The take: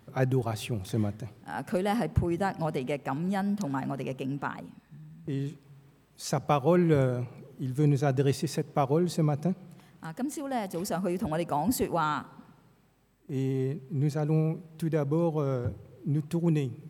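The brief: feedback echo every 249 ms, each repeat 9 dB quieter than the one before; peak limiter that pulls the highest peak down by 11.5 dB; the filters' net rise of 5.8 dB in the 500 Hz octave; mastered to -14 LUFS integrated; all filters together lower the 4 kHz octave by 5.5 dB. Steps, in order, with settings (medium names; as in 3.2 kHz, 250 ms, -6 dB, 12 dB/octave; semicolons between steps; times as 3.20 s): peaking EQ 500 Hz +7 dB; peaking EQ 4 kHz -7.5 dB; peak limiter -19.5 dBFS; feedback delay 249 ms, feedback 35%, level -9 dB; trim +16 dB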